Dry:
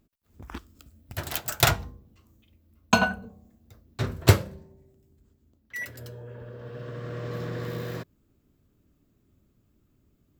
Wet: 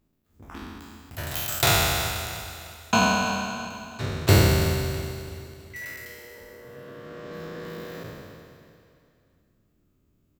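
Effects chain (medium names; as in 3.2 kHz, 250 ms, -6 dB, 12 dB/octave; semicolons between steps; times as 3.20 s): spectral sustain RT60 2.28 s; hum notches 60/120/180/240 Hz; feedback delay 329 ms, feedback 46%, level -17 dB; trim -4.5 dB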